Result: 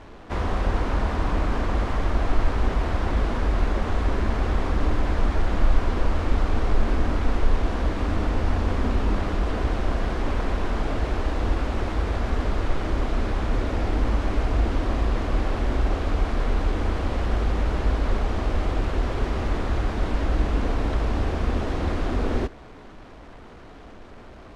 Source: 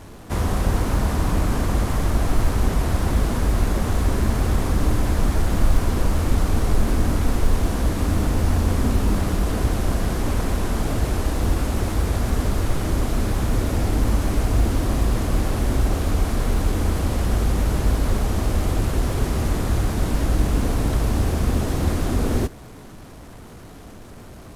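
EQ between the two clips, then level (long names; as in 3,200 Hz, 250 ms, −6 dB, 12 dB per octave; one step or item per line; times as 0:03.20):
low-pass filter 3,400 Hz 12 dB per octave
parametric band 130 Hz −9 dB 1.8 octaves
0.0 dB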